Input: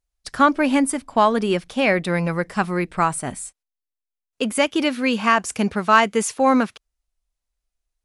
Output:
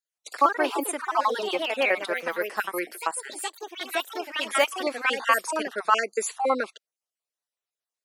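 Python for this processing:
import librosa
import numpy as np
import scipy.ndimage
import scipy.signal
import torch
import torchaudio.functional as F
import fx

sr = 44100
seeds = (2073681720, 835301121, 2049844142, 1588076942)

y = fx.spec_dropout(x, sr, seeds[0], share_pct=39)
y = fx.echo_pitch(y, sr, ms=99, semitones=3, count=3, db_per_echo=-6.0)
y = scipy.signal.sosfilt(scipy.signal.butter(4, 380.0, 'highpass', fs=sr, output='sos'), y)
y = F.gain(torch.from_numpy(y), -2.5).numpy()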